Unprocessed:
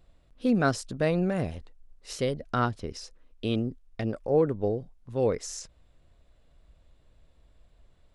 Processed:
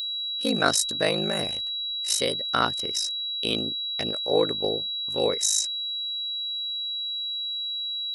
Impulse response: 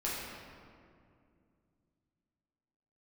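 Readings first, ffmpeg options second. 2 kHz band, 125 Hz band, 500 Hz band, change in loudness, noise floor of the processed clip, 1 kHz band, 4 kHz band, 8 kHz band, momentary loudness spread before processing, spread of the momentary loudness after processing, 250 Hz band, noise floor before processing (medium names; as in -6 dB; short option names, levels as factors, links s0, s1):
+5.5 dB, -7.5 dB, +0.5 dB, +4.0 dB, -31 dBFS, +3.5 dB, +22.0 dB, +15.0 dB, 15 LU, 5 LU, -3.5 dB, -62 dBFS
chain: -af "aeval=exprs='val(0)*sin(2*PI*26*n/s)':c=same,aeval=exprs='val(0)+0.00891*sin(2*PI*3900*n/s)':c=same,aemphasis=mode=production:type=riaa,volume=2.11"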